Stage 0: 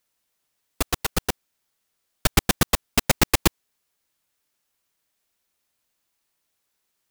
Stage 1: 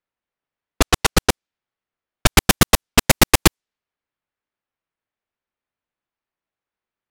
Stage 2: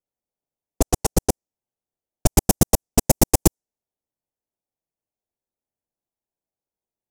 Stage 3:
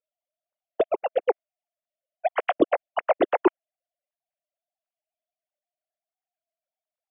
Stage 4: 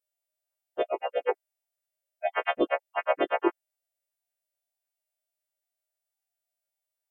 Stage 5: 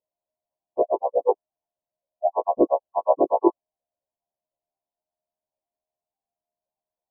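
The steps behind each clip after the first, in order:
leveller curve on the samples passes 3; low-pass that shuts in the quiet parts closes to 2,200 Hz, open at −10 dBFS
flat-topped bell 2,200 Hz −15.5 dB 2.3 octaves; level −1.5 dB
three sine waves on the formant tracks; level −4.5 dB
every partial snapped to a pitch grid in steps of 2 semitones; level −3.5 dB
linear-phase brick-wall low-pass 1,100 Hz; level +7 dB

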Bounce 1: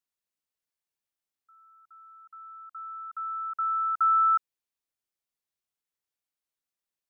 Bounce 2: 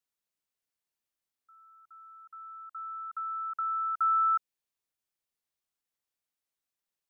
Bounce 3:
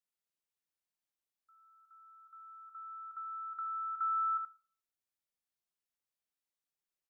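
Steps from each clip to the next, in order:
dynamic equaliser 1,200 Hz, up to −4 dB, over −34 dBFS, Q 1.5
single-tap delay 76 ms −6.5 dB; on a send at −16.5 dB: convolution reverb RT60 0.55 s, pre-delay 6 ms; on the sum: level −6.5 dB

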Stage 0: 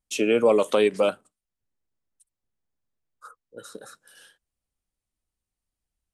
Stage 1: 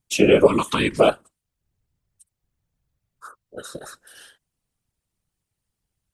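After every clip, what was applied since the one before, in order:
gain on a spectral selection 0:00.47–0:00.97, 330–890 Hz −19 dB
random phases in short frames
level +6 dB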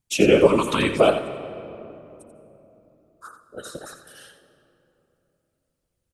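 slap from a distant wall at 15 metres, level −9 dB
convolution reverb RT60 3.2 s, pre-delay 142 ms, DRR 14 dB
level −1 dB

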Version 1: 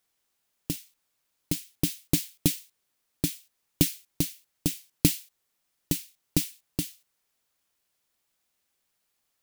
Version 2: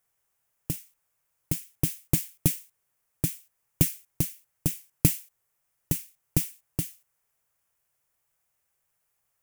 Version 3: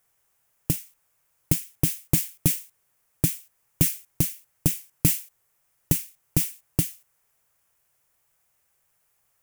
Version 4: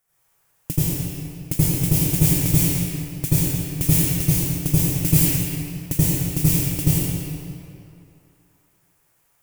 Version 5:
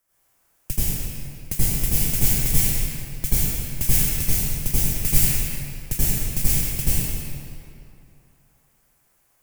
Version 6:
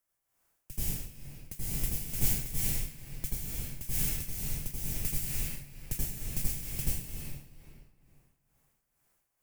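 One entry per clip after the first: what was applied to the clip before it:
octave-band graphic EQ 125/250/4,000 Hz +6/−11/−12 dB; level +2 dB
brickwall limiter −12 dBFS, peak gain reduction 7.5 dB; level +6.5 dB
convolution reverb RT60 2.7 s, pre-delay 77 ms, DRR −12 dB; level −4.5 dB
frequency shifter −150 Hz
amplitude tremolo 2.2 Hz, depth 68%; level −8.5 dB

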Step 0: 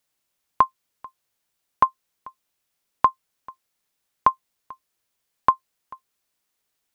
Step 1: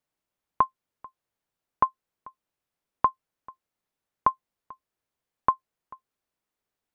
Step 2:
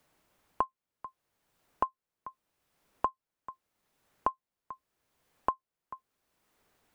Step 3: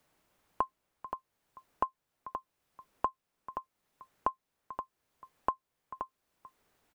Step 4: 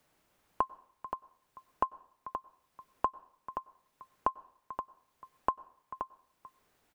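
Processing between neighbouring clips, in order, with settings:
high-shelf EQ 2,100 Hz −12 dB; level −2 dB
multiband upward and downward compressor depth 70%; level −4 dB
single-tap delay 525 ms −8 dB; level −1.5 dB
convolution reverb RT60 0.60 s, pre-delay 90 ms, DRR 23 dB; level +1 dB

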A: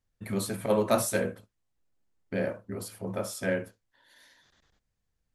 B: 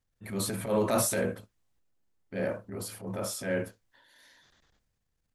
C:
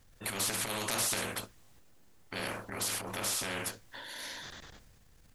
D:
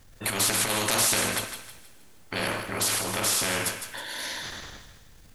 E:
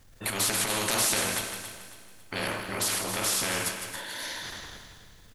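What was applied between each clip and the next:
transient designer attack −8 dB, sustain +5 dB
every bin compressed towards the loudest bin 4 to 1; level −3 dB
feedback echo with a high-pass in the loop 158 ms, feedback 40%, high-pass 930 Hz, level −8.5 dB; coupled-rooms reverb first 0.91 s, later 2.8 s, DRR 12 dB; level +8 dB
repeating echo 275 ms, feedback 37%, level −11 dB; level −2.5 dB

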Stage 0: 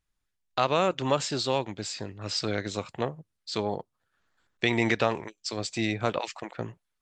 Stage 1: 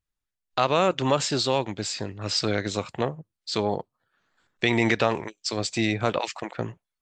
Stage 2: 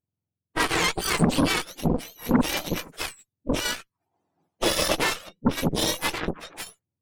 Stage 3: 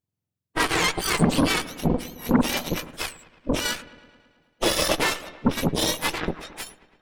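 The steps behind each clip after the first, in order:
in parallel at −3 dB: brickwall limiter −18 dBFS, peak gain reduction 8.5 dB; on the sum: noise reduction from a noise print of the clip's start 11 dB
frequency axis turned over on the octave scale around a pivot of 1,100 Hz; harmonic generator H 7 −25 dB, 8 −13 dB, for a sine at −9.5 dBFS
delay with a low-pass on its return 109 ms, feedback 65%, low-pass 2,600 Hz, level −17.5 dB; level +1 dB

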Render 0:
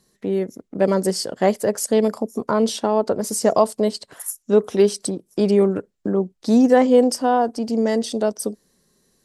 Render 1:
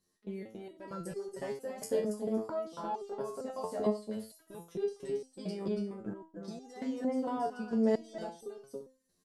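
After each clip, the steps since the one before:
output level in coarse steps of 23 dB
on a send: multi-tap delay 279/344 ms −4/−13 dB
on the sum: step-sequenced resonator 4.4 Hz 89–400 Hz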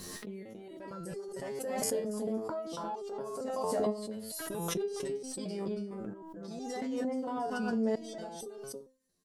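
background raised ahead of every attack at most 20 dB per second
level −3 dB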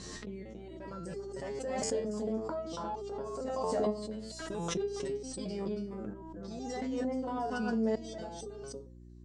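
Butterworth low-pass 8,100 Hz 48 dB per octave
hum with harmonics 60 Hz, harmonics 6, −52 dBFS −5 dB per octave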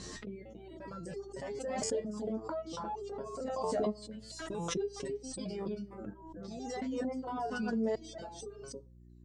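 reverb reduction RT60 1.1 s

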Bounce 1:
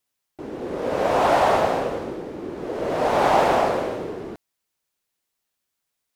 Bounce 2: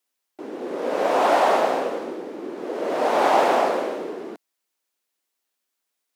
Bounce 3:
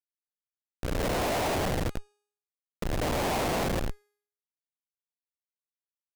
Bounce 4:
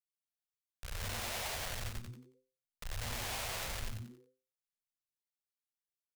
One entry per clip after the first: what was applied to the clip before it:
high-pass filter 230 Hz 24 dB per octave
fade in at the beginning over 0.93 s; comparator with hysteresis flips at −19.5 dBFS; hum removal 413.1 Hz, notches 31; level −3.5 dB
guitar amp tone stack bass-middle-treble 10-0-10; on a send: echo with shifted repeats 91 ms, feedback 33%, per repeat −130 Hz, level −4 dB; on the sum: level −4.5 dB

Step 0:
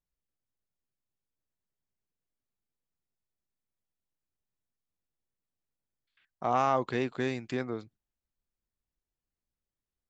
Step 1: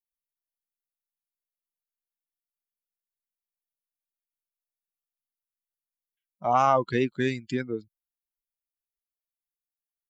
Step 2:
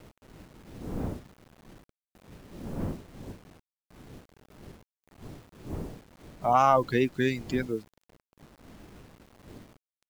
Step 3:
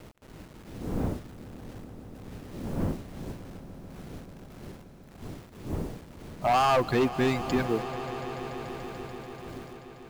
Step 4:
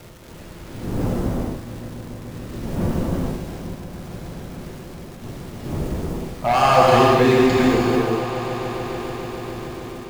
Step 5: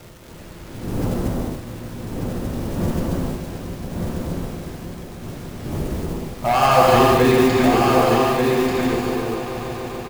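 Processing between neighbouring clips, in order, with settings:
spectral dynamics exaggerated over time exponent 2; level +8 dB
wind on the microphone 280 Hz −43 dBFS; bit reduction 9 bits
gain into a clipping stage and back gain 22.5 dB; echo that builds up and dies away 145 ms, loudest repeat 5, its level −17.5 dB; level +3.5 dB
reverb whose tail is shaped and stops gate 470 ms flat, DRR −5 dB; surface crackle 330 per second −40 dBFS; level +4 dB
one scale factor per block 5 bits; single-tap delay 1,189 ms −4.5 dB

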